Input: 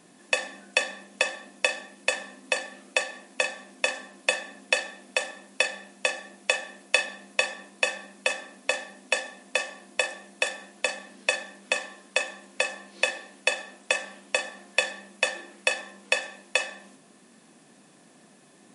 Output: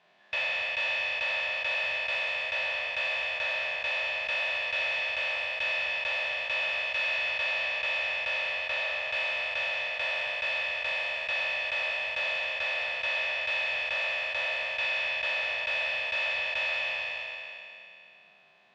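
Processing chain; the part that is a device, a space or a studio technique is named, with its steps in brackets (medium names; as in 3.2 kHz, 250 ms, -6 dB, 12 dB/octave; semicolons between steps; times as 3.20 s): spectral sustain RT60 2.91 s; scooped metal amplifier (valve stage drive 25 dB, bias 0.7; cabinet simulation 110–3400 Hz, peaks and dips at 390 Hz +7 dB, 640 Hz +10 dB, 910 Hz +4 dB; amplifier tone stack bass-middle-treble 10-0-10); trim +2.5 dB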